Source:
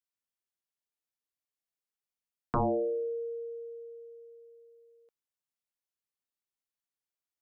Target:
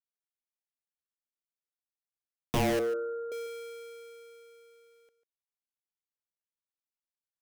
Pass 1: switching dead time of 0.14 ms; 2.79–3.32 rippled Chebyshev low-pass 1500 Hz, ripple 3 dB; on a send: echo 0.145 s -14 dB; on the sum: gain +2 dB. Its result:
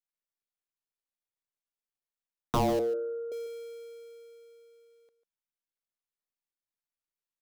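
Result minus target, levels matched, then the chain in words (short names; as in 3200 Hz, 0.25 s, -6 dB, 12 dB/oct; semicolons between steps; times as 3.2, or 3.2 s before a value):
switching dead time: distortion -9 dB
switching dead time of 0.29 ms; 2.79–3.32 rippled Chebyshev low-pass 1500 Hz, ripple 3 dB; on a send: echo 0.145 s -14 dB; on the sum: gain +2 dB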